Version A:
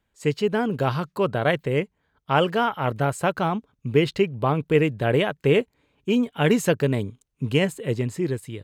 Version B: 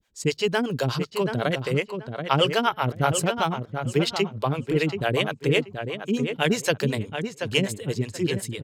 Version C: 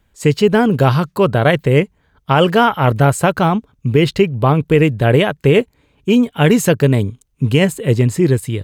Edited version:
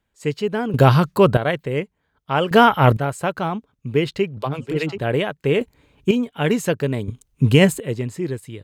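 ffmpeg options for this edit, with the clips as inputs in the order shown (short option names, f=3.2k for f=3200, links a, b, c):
-filter_complex "[2:a]asplit=4[a][b][c][d];[0:a]asplit=6[e][f][g][h][i][j];[e]atrim=end=0.742[k];[a]atrim=start=0.738:end=1.372[l];[f]atrim=start=1.368:end=2.512[m];[b]atrim=start=2.508:end=2.972[n];[g]atrim=start=2.968:end=4.372[o];[1:a]atrim=start=4.368:end=4.982[p];[h]atrim=start=4.978:end=5.612[q];[c]atrim=start=5.608:end=6.112[r];[i]atrim=start=6.108:end=7.082[s];[d]atrim=start=7.078:end=7.802[t];[j]atrim=start=7.798[u];[k][l]acrossfade=d=0.004:c1=hsin:c2=hsin[v];[v][m]acrossfade=d=0.004:c1=hsin:c2=hsin[w];[w][n]acrossfade=d=0.004:c1=hsin:c2=hsin[x];[x][o]acrossfade=d=0.004:c1=hsin:c2=hsin[y];[y][p]acrossfade=d=0.004:c1=hsin:c2=hsin[z];[z][q]acrossfade=d=0.004:c1=hsin:c2=hsin[aa];[aa][r]acrossfade=d=0.004:c1=hsin:c2=hsin[ab];[ab][s]acrossfade=d=0.004:c1=hsin:c2=hsin[ac];[ac][t]acrossfade=d=0.004:c1=hsin:c2=hsin[ad];[ad][u]acrossfade=d=0.004:c1=hsin:c2=hsin"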